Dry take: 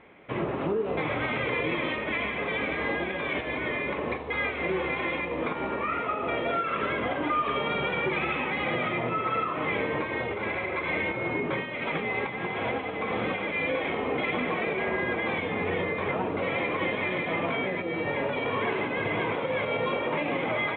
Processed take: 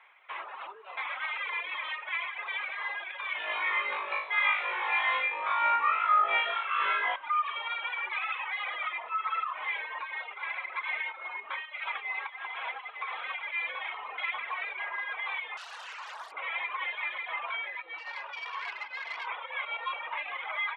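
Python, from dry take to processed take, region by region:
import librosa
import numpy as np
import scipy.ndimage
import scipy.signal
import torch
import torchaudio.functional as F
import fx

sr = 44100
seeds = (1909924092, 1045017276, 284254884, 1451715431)

y = fx.chain(x, sr, fx.highpass(hz=53.0, slope=12),
    fx.low_shelf(hz=330.0, db=10.5),
    fx.room_flutter(wall_m=3.3, rt60_s=1.1), at=(3.38, 7.16))
y = fx.chain(y, sr, fx.delta_mod(bps=32000, step_db=-44.0),
    fx.highpass(hz=840.0, slope=6),
    fx.doppler_dist(depth_ms=0.73), at=(15.57, 16.32))
y = fx.chain(y, sr, fx.peak_eq(hz=2200.0, db=2.0, octaves=0.65),
    fx.tube_stage(drive_db=21.0, bias=0.75), at=(17.98, 19.27))
y = scipy.signal.sosfilt(scipy.signal.cheby1(3, 1.0, 960.0, 'highpass', fs=sr, output='sos'), y)
y = fx.dereverb_blind(y, sr, rt60_s=1.5)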